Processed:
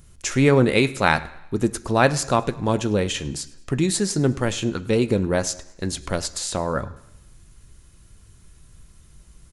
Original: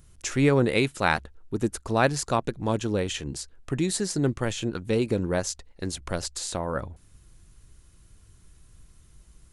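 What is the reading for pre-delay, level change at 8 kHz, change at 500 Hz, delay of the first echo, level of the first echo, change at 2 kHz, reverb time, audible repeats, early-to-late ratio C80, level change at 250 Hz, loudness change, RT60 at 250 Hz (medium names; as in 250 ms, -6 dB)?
3 ms, +5.0 dB, +4.5 dB, 104 ms, -22.5 dB, +5.0 dB, 0.90 s, 2, 18.5 dB, +5.0 dB, +5.0 dB, 0.85 s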